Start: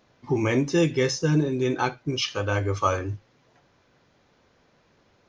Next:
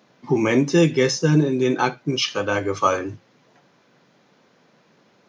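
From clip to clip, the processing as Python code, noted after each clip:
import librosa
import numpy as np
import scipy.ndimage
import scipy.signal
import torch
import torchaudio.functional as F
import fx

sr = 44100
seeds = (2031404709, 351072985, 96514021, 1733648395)

y = scipy.signal.sosfilt(scipy.signal.butter(4, 140.0, 'highpass', fs=sr, output='sos'), x)
y = fx.peak_eq(y, sr, hz=190.0, db=3.5, octaves=0.63)
y = y * 10.0 ** (4.5 / 20.0)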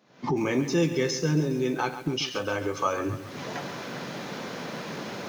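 y = fx.recorder_agc(x, sr, target_db=-13.0, rise_db_per_s=66.0, max_gain_db=30)
y = fx.echo_crushed(y, sr, ms=137, feedback_pct=55, bits=6, wet_db=-11.0)
y = y * 10.0 ** (-8.0 / 20.0)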